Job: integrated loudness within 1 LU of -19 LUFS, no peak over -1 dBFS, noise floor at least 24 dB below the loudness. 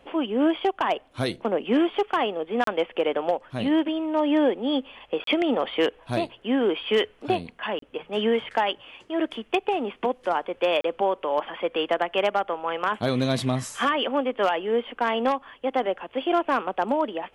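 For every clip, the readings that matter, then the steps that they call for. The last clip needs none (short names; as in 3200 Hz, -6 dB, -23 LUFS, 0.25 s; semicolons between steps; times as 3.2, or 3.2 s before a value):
clipped 0.1%; flat tops at -13.5 dBFS; dropouts 4; longest dropout 33 ms; loudness -25.5 LUFS; peak -13.5 dBFS; loudness target -19.0 LUFS
-> clip repair -13.5 dBFS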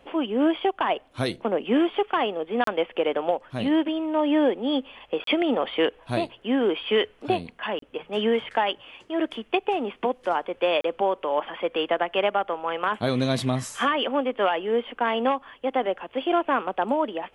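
clipped 0.0%; dropouts 4; longest dropout 33 ms
-> interpolate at 2.64/5.24/7.79/10.81, 33 ms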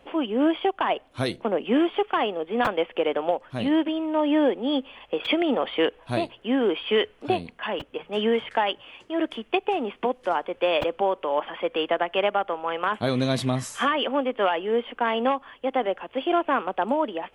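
dropouts 0; loudness -25.5 LUFS; peak -10.5 dBFS; loudness target -19.0 LUFS
-> gain +6.5 dB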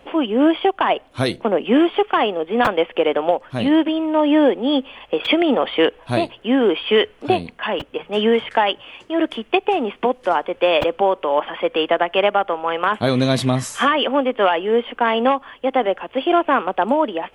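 loudness -19.0 LUFS; peak -4.0 dBFS; noise floor -50 dBFS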